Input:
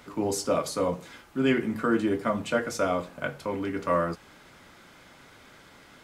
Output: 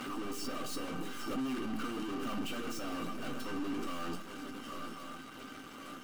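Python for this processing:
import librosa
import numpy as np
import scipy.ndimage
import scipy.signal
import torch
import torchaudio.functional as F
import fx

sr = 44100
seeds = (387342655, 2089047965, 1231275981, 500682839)

p1 = fx.highpass(x, sr, hz=120.0, slope=6)
p2 = fx.hum_notches(p1, sr, base_hz=60, count=3)
p3 = fx.echo_swing(p2, sr, ms=1087, ratio=3, feedback_pct=40, wet_db=-22.5)
p4 = fx.dynamic_eq(p3, sr, hz=350.0, q=1.3, threshold_db=-39.0, ratio=4.0, max_db=4)
p5 = fx.leveller(p4, sr, passes=2)
p6 = fx.over_compress(p5, sr, threshold_db=-28.0, ratio=-1.0)
p7 = p5 + (p6 * librosa.db_to_amplitude(0.0))
p8 = fx.tube_stage(p7, sr, drive_db=32.0, bias=0.75)
p9 = 10.0 ** (-34.0 / 20.0) * (np.abs((p8 / 10.0 ** (-34.0 / 20.0) + 3.0) % 4.0 - 2.0) - 1.0)
p10 = fx.comb_fb(p9, sr, f0_hz=780.0, decay_s=0.32, harmonics='all', damping=0.0, mix_pct=90)
p11 = fx.small_body(p10, sr, hz=(260.0, 1200.0, 2800.0), ring_ms=45, db=18)
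p12 = fx.hpss(p11, sr, part='percussive', gain_db=6)
p13 = fx.pre_swell(p12, sr, db_per_s=34.0)
y = p13 * librosa.db_to_amplitude(6.0)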